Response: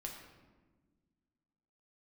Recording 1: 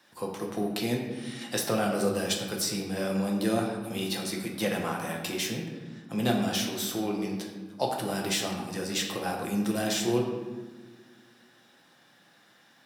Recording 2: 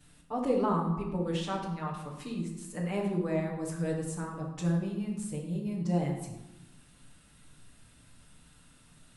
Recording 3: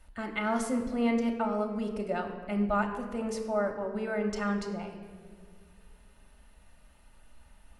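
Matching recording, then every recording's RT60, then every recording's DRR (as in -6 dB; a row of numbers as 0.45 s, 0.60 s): 1; 1.4 s, 1.0 s, 1.8 s; -0.5 dB, -8.5 dB, 2.5 dB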